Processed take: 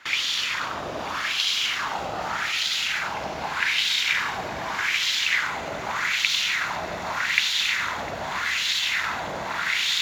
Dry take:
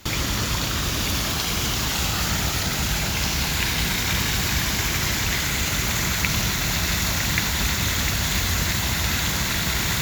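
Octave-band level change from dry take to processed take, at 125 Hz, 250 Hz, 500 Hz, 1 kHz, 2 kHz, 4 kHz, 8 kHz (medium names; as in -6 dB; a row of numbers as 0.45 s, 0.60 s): -19.5 dB, -13.0 dB, -1.0 dB, +1.0 dB, +1.5 dB, 0.0 dB, -9.5 dB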